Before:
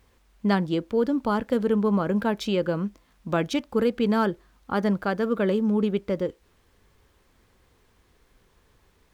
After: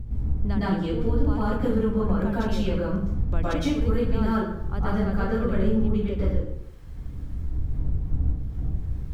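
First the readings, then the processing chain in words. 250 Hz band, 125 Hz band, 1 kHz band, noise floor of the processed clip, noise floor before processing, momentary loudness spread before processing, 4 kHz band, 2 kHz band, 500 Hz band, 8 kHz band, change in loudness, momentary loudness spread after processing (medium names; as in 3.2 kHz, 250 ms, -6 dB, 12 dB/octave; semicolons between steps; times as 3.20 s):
-0.5 dB, +7.0 dB, -3.0 dB, -35 dBFS, -63 dBFS, 7 LU, -4.0 dB, -3.0 dB, -3.0 dB, no reading, -1.0 dB, 8 LU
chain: wind noise 92 Hz -30 dBFS; bass shelf 130 Hz +10.5 dB; compression 2.5:1, threshold -29 dBFS, peak gain reduction 14 dB; plate-style reverb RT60 0.73 s, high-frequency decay 0.65×, pre-delay 100 ms, DRR -9.5 dB; trim -4.5 dB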